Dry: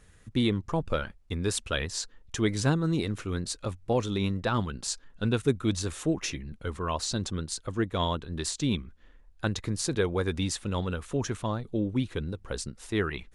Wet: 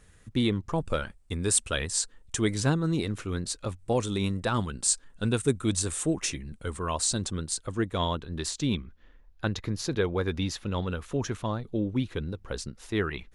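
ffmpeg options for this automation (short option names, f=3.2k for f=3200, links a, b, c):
-af "asetnsamples=n=441:p=0,asendcmd='0.78 equalizer g 13.5;2.54 equalizer g 3;3.79 equalizer g 14.5;7.2 equalizer g 7;7.99 equalizer g -1.5;8.74 equalizer g -12.5;10.87 equalizer g -5',equalizer=f=8.5k:t=o:w=0.48:g=2"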